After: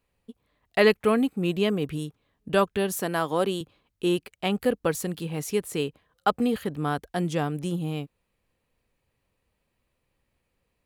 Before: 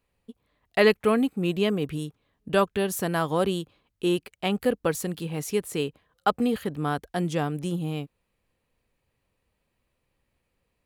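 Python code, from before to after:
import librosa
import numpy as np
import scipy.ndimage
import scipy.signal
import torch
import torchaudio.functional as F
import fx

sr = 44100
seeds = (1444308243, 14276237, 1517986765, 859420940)

y = fx.highpass(x, sr, hz=200.0, slope=12, at=(2.96, 3.61))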